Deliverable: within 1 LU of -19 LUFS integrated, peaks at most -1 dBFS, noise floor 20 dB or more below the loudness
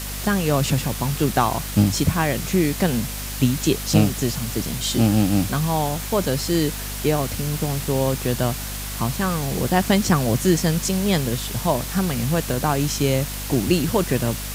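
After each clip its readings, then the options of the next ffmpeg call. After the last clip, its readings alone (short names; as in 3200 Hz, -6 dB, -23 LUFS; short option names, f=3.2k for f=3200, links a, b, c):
hum 50 Hz; harmonics up to 250 Hz; hum level -30 dBFS; noise floor -30 dBFS; noise floor target -42 dBFS; loudness -21.5 LUFS; peak -3.5 dBFS; loudness target -19.0 LUFS
-> -af "bandreject=f=50:t=h:w=6,bandreject=f=100:t=h:w=6,bandreject=f=150:t=h:w=6,bandreject=f=200:t=h:w=6,bandreject=f=250:t=h:w=6"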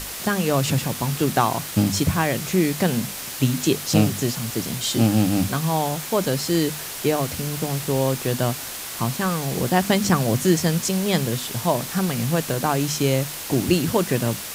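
hum none; noise floor -33 dBFS; noise floor target -42 dBFS
-> -af "afftdn=nr=9:nf=-33"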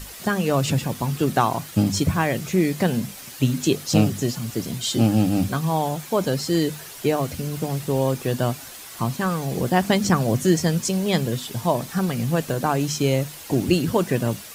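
noise floor -40 dBFS; noise floor target -43 dBFS
-> -af "afftdn=nr=6:nf=-40"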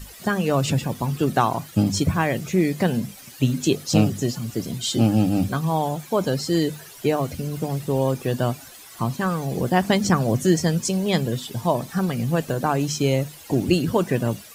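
noise floor -44 dBFS; loudness -23.0 LUFS; peak -4.0 dBFS; loudness target -19.0 LUFS
-> -af "volume=4dB,alimiter=limit=-1dB:level=0:latency=1"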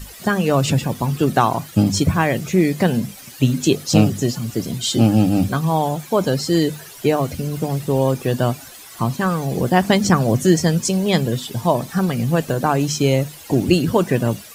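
loudness -19.0 LUFS; peak -1.0 dBFS; noise floor -40 dBFS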